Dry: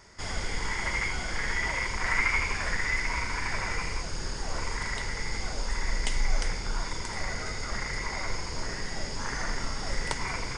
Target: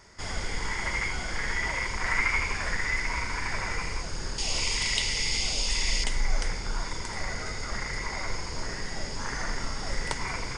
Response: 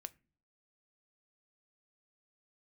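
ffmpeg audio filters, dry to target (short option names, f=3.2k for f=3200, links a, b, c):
-filter_complex "[0:a]asettb=1/sr,asplit=3[a][b][c];[a]atrim=end=4.384[d];[b]atrim=start=4.38:end=6.04,asetpts=PTS-STARTPTS,afade=t=in:d=0.004:c=qsin,afade=t=out:st=1.656:d=0.004:c=qsin,highshelf=f=2.1k:t=q:w=3:g=9.5[e];[c]atrim=start=6.036[f];[d][e]acrossfade=d=0.004:c1=hsin:c2=qsin[g];[g][f]acrossfade=d=0.004:c1=qsin:c2=hsin"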